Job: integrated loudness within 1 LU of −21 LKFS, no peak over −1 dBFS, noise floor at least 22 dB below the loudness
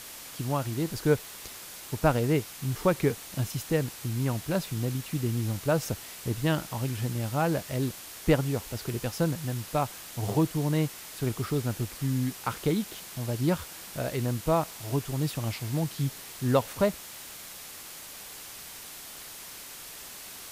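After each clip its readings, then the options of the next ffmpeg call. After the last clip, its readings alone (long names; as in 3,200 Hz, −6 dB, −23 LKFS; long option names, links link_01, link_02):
background noise floor −44 dBFS; target noise floor −52 dBFS; integrated loudness −30.0 LKFS; sample peak −9.0 dBFS; target loudness −21.0 LKFS
→ -af "afftdn=noise_reduction=8:noise_floor=-44"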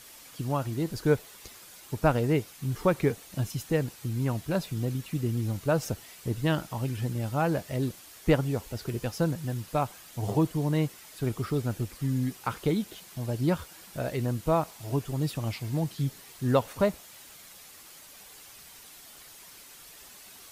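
background noise floor −50 dBFS; target noise floor −52 dBFS
→ -af "afftdn=noise_reduction=6:noise_floor=-50"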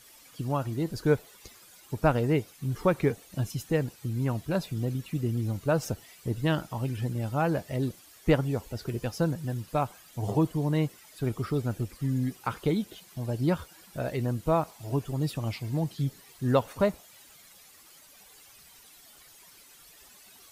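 background noise floor −55 dBFS; integrated loudness −30.0 LKFS; sample peak −9.0 dBFS; target loudness −21.0 LKFS
→ -af "volume=9dB,alimiter=limit=-1dB:level=0:latency=1"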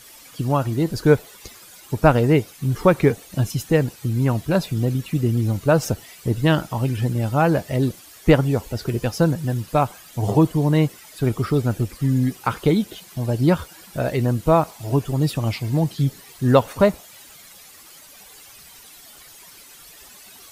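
integrated loudness −21.0 LKFS; sample peak −1.0 dBFS; background noise floor −46 dBFS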